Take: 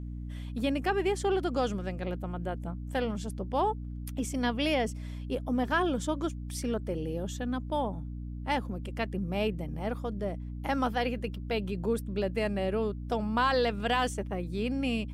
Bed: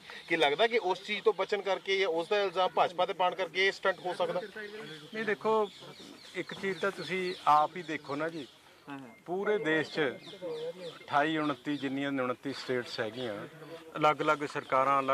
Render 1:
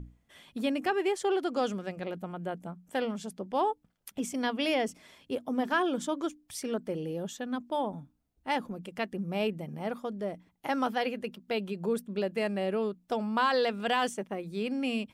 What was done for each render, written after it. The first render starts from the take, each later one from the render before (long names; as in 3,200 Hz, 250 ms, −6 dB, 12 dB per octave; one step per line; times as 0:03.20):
mains-hum notches 60/120/180/240/300 Hz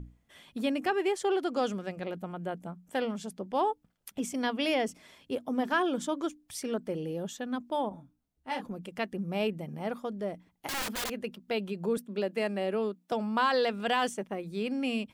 0:07.89–0:08.65: micro pitch shift up and down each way 23 cents
0:10.67–0:11.10: wrap-around overflow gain 29 dB
0:11.97–0:13.12: Butterworth high-pass 190 Hz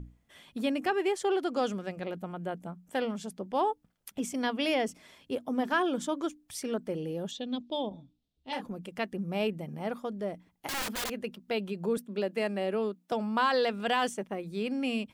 0:07.31–0:08.53: drawn EQ curve 530 Hz 0 dB, 1,500 Hz −14 dB, 3,600 Hz +10 dB, 6,600 Hz −5 dB, 16,000 Hz −24 dB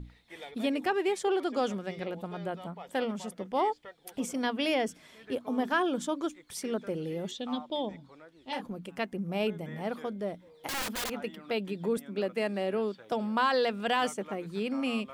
mix in bed −19 dB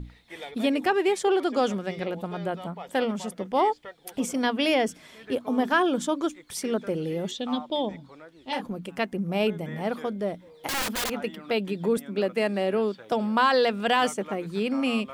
level +5.5 dB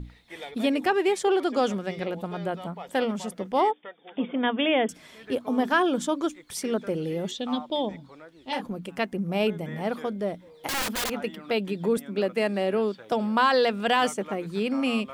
0:03.71–0:04.89: linear-phase brick-wall band-pass 160–3,700 Hz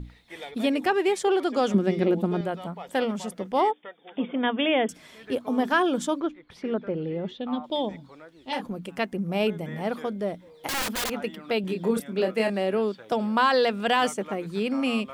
0:01.74–0:02.41: hollow resonant body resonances 220/340 Hz, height 13 dB
0:06.20–0:07.64: high-frequency loss of the air 350 metres
0:11.61–0:12.50: double-tracking delay 27 ms −5 dB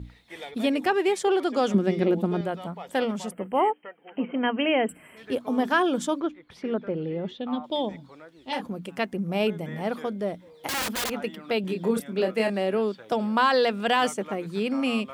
high-pass filter 44 Hz
0:03.31–0:05.17: gain on a spectral selection 3,200–7,500 Hz −29 dB